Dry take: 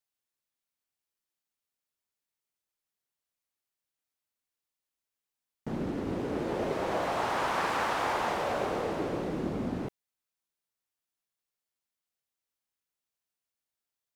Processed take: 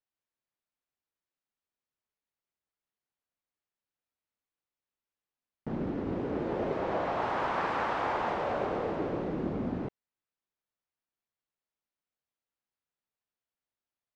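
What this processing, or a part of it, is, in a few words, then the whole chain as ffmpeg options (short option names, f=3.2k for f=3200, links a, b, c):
through cloth: -filter_complex "[0:a]asettb=1/sr,asplit=3[a][b][c];[a]atrim=end=6.794[d];[b]atrim=start=6.79:end=7.22,asetpts=PTS-STARTPTS,afade=t=in:d=0.004:c=qsin,afade=t=out:st=0.426:d=0.004:c=qsin,lowpass=8.8k[e];[c]atrim=start=7.216[f];[d][e]acrossfade=d=0.004:c1=hsin:c2=qsin[g];[g][f]acrossfade=d=0.004:c1=qsin:c2=hsin,lowpass=6.4k,highshelf=f=3.8k:g=-14"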